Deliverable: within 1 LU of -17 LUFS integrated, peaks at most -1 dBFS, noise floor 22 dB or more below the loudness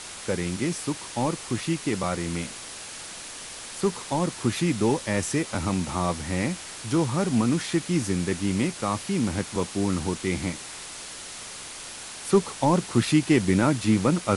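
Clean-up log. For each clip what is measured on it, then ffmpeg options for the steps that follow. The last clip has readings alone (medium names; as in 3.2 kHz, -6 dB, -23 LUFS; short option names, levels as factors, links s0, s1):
noise floor -40 dBFS; noise floor target -49 dBFS; loudness -26.5 LUFS; peak level -8.5 dBFS; loudness target -17.0 LUFS
-> -af "afftdn=nr=9:nf=-40"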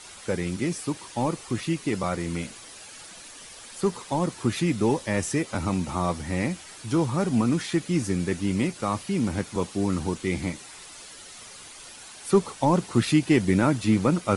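noise floor -45 dBFS; noise floor target -48 dBFS
-> -af "afftdn=nr=6:nf=-45"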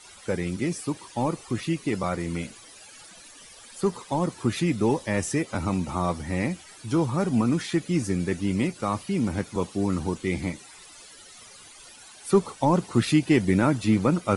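noise floor -48 dBFS; loudness -26.0 LUFS; peak level -9.0 dBFS; loudness target -17.0 LUFS
-> -af "volume=2.82,alimiter=limit=0.891:level=0:latency=1"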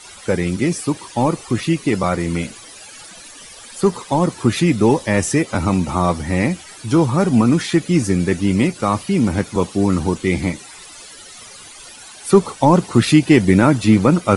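loudness -17.0 LUFS; peak level -1.0 dBFS; noise floor -39 dBFS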